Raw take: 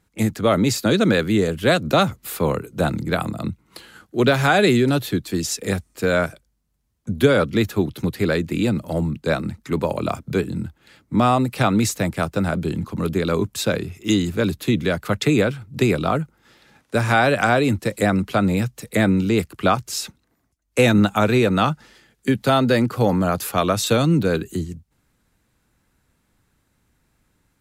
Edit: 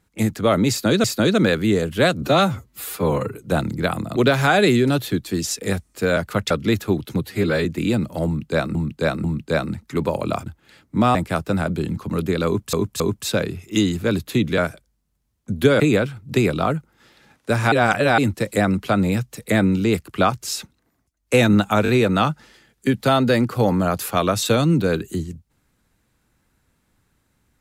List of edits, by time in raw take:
0.7–1.04 loop, 2 plays
1.88–2.63 stretch 1.5×
3.45–4.17 cut
6.17–7.39 swap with 14.91–15.25
8.1–8.39 stretch 1.5×
9–9.49 loop, 3 plays
10.22–10.64 cut
11.33–12.02 cut
13.33–13.6 loop, 3 plays
17.17–17.63 reverse
21.29 stutter 0.02 s, 3 plays

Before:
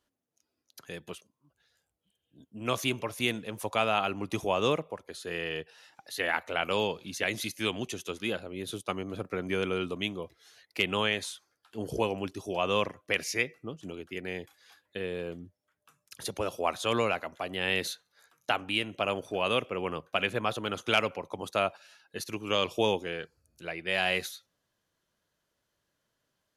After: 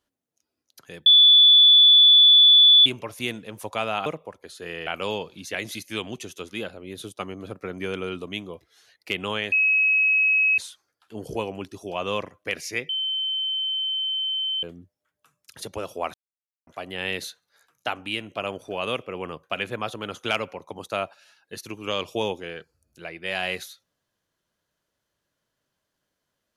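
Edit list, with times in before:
1.06–2.86 bleep 3460 Hz -10 dBFS
4.06–4.71 cut
5.52–6.56 cut
11.21 add tone 2560 Hz -16.5 dBFS 1.06 s
13.52–15.26 bleep 3080 Hz -23.5 dBFS
16.77–17.3 mute

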